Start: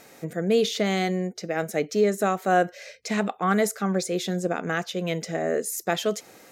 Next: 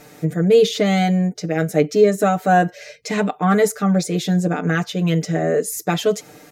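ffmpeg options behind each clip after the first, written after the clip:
ffmpeg -i in.wav -af "lowshelf=frequency=270:gain=10,aecho=1:1:6.7:0.86,volume=1.5dB" out.wav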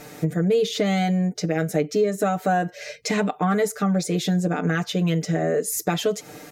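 ffmpeg -i in.wav -af "acompressor=threshold=-24dB:ratio=3,volume=3dB" out.wav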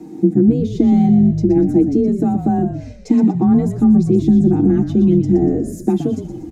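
ffmpeg -i in.wav -filter_complex "[0:a]firequalizer=gain_entry='entry(110,0);entry(220,12);entry(320,14);entry(520,-19);entry(770,-2);entry(1300,-19);entry(7400,-14);entry(14000,-22)':delay=0.05:min_phase=1,afreqshift=25,asplit=2[link_01][link_02];[link_02]asplit=5[link_03][link_04][link_05][link_06][link_07];[link_03]adelay=120,afreqshift=-51,volume=-9dB[link_08];[link_04]adelay=240,afreqshift=-102,volume=-15.9dB[link_09];[link_05]adelay=360,afreqshift=-153,volume=-22.9dB[link_10];[link_06]adelay=480,afreqshift=-204,volume=-29.8dB[link_11];[link_07]adelay=600,afreqshift=-255,volume=-36.7dB[link_12];[link_08][link_09][link_10][link_11][link_12]amix=inputs=5:normalize=0[link_13];[link_01][link_13]amix=inputs=2:normalize=0,volume=2dB" out.wav

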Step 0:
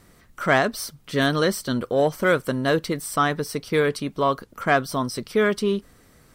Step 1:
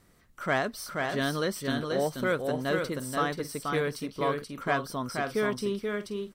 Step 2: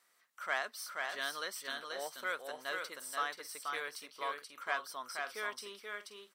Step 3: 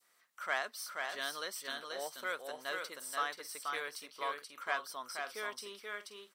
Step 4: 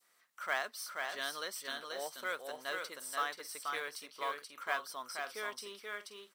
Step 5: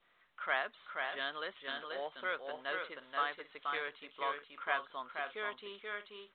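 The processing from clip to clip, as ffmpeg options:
ffmpeg -i in.wav -af "aecho=1:1:481|529:0.631|0.168,volume=-8.5dB" out.wav
ffmpeg -i in.wav -af "highpass=960,volume=-4.5dB" out.wav
ffmpeg -i in.wav -af "adynamicequalizer=threshold=0.00316:dfrequency=1600:dqfactor=0.91:tfrequency=1600:tqfactor=0.91:attack=5:release=100:ratio=0.375:range=2:mode=cutabove:tftype=bell,volume=1dB" out.wav
ffmpeg -i in.wav -af "acrusher=bits=6:mode=log:mix=0:aa=0.000001" out.wav
ffmpeg -i in.wav -af "volume=1dB" -ar 8000 -c:a pcm_mulaw out.wav

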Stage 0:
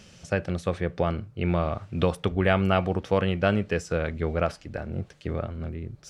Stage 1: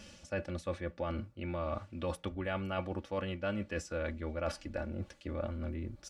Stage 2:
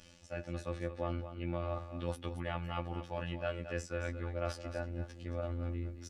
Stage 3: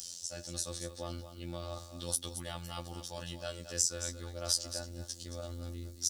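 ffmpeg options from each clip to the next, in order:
ffmpeg -i in.wav -af "areverse,acompressor=threshold=-31dB:ratio=5,areverse,aecho=1:1:3.5:0.74,volume=-3dB" out.wav
ffmpeg -i in.wav -af "afftfilt=real='hypot(re,im)*cos(PI*b)':imag='0':win_size=2048:overlap=0.75,aecho=1:1:223:0.299,dynaudnorm=framelen=360:gausssize=3:maxgain=4dB,volume=-2.5dB" out.wav
ffmpeg -i in.wav -af "aexciter=amount=12.8:drive=8.1:freq=3800,volume=-4.5dB" out.wav

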